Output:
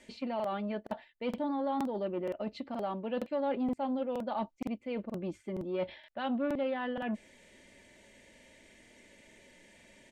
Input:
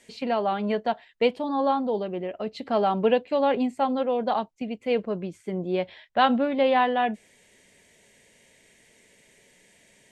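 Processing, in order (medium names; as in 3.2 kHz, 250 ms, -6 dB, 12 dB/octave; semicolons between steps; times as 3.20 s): treble shelf 6.7 kHz -11.5 dB; reverse; compression 5:1, threshold -34 dBFS, peak gain reduction 16.5 dB; reverse; bass shelf 320 Hz +3.5 dB; comb 3.4 ms, depth 50%; crackling interface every 0.47 s, samples 2048, repeat, from 0.35 s; transformer saturation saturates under 430 Hz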